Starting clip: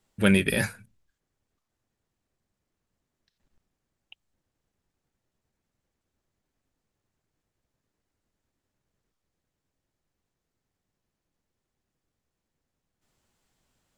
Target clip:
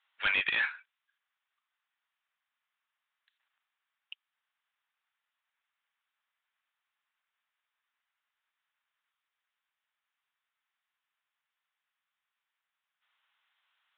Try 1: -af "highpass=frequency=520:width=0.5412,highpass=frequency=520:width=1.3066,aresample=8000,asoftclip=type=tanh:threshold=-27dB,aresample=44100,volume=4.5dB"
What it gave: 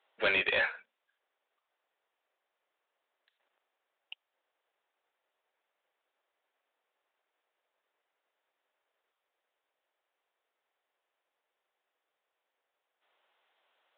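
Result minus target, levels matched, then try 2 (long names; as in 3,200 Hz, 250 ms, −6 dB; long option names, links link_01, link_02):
500 Hz band +16.0 dB
-af "highpass=frequency=1100:width=0.5412,highpass=frequency=1100:width=1.3066,aresample=8000,asoftclip=type=tanh:threshold=-27dB,aresample=44100,volume=4.5dB"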